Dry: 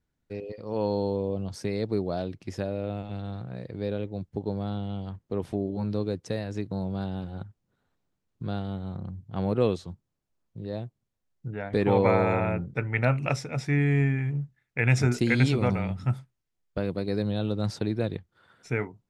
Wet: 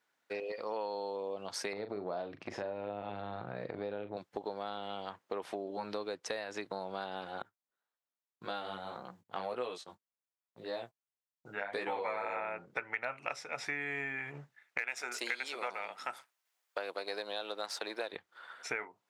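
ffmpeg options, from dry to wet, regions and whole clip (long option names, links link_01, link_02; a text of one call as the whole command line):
ffmpeg -i in.wav -filter_complex "[0:a]asettb=1/sr,asplit=3[link_01][link_02][link_03];[link_01]atrim=end=1.734[link_04];[link_02]atrim=start=1.73:end=4.17,asetpts=PTS-STARTPTS,afade=type=in:duration=0.004:curve=qsin,afade=type=out:start_time=2.436:duration=0.004:curve=qsin,aemphasis=mode=reproduction:type=riaa,acompressor=threshold=-26dB:ratio=4:attack=3.2:release=140:knee=1:detection=peak,asplit=2[link_05][link_06];[link_06]adelay=39,volume=-10dB[link_07];[link_05][link_07]amix=inputs=2:normalize=0,atrim=end_sample=107604[link_08];[link_03]atrim=start=4.166[link_09];[link_04][link_08]acrossfade=duration=0.004:curve1=hsin:curve2=qsin[link_10];[link_10][link_09]acrossfade=duration=0.004:curve1=qsin:curve2=hsin,asettb=1/sr,asplit=3[link_11][link_12][link_13];[link_11]atrim=end=7.424[link_14];[link_12]atrim=start=7.42:end=12.36,asetpts=PTS-STARTPTS,afade=type=in:duration=0.004:curve=qsin,afade=type=out:start_time=4.936:duration=0.004:curve=qsin,agate=range=-19dB:threshold=-44dB:ratio=16:release=100:detection=peak,highshelf=frequency=7900:gain=9.5,flanger=delay=16:depth=4.3:speed=1.8[link_15];[link_13]atrim=start=12.356[link_16];[link_14][link_15]acrossfade=duration=0.004:curve1=hsin:curve2=qsin[link_17];[link_17][link_16]acrossfade=duration=0.004:curve1=qsin:curve2=hsin,asettb=1/sr,asplit=3[link_18][link_19][link_20];[link_18]atrim=end=14.784[link_21];[link_19]atrim=start=14.78:end=18.13,asetpts=PTS-STARTPTS,afade=type=in:duration=0.004:curve=qsin,afade=type=out:start_time=3.346:duration=0.004:curve=qsin,aeval=exprs='if(lt(val(0),0),0.708*val(0),val(0))':channel_layout=same,highpass=390,highshelf=frequency=7300:gain=8.5[link_22];[link_20]atrim=start=18.126[link_23];[link_21][link_22]acrossfade=duration=0.004:curve1=hsin:curve2=qsin[link_24];[link_24][link_23]acrossfade=duration=0.004:curve1=qsin:curve2=hsin,highpass=830,highshelf=frequency=3800:gain=-8.5,acompressor=threshold=-47dB:ratio=6,volume=12dB" out.wav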